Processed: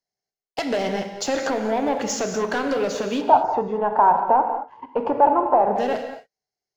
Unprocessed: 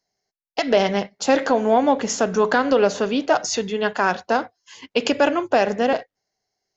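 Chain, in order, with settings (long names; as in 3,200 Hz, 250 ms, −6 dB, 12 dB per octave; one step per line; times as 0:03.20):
leveller curve on the samples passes 2
downward compressor 2 to 1, threshold −16 dBFS, peak gain reduction 4 dB
0:03.21–0:05.76: low-pass with resonance 910 Hz, resonance Q 8.3
convolution reverb, pre-delay 3 ms, DRR 6 dB
level −7.5 dB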